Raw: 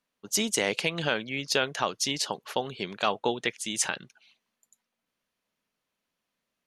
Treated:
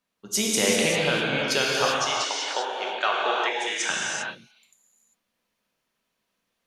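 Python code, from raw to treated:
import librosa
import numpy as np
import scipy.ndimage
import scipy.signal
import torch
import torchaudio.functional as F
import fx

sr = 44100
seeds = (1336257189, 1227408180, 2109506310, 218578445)

y = fx.cabinet(x, sr, low_hz=410.0, low_slope=24, high_hz=6700.0, hz=(480.0, 1500.0, 4600.0), db=(-6, 8, -6), at=(1.82, 3.9))
y = fx.rev_gated(y, sr, seeds[0], gate_ms=420, shape='flat', drr_db=-4.0)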